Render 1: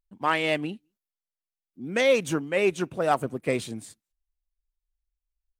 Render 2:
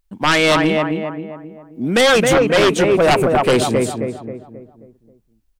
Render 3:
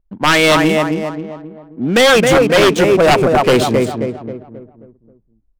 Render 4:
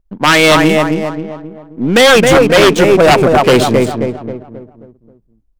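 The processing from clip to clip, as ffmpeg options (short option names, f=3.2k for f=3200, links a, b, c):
-filter_complex "[0:a]asplit=2[a][b];[b]adelay=267,lowpass=f=1.5k:p=1,volume=-5dB,asplit=2[c][d];[d]adelay=267,lowpass=f=1.5k:p=1,volume=0.45,asplit=2[e][f];[f]adelay=267,lowpass=f=1.5k:p=1,volume=0.45,asplit=2[g][h];[h]adelay=267,lowpass=f=1.5k:p=1,volume=0.45,asplit=2[i][j];[j]adelay=267,lowpass=f=1.5k:p=1,volume=0.45,asplit=2[k][l];[l]adelay=267,lowpass=f=1.5k:p=1,volume=0.45[m];[a][c][e][g][i][k][m]amix=inputs=7:normalize=0,aeval=exprs='0.355*sin(PI/2*3.55*val(0)/0.355)':c=same"
-af "adynamicsmooth=sensitivity=6.5:basefreq=760,volume=3dB"
-af "aeval=exprs='if(lt(val(0),0),0.708*val(0),val(0))':c=same,volume=4.5dB"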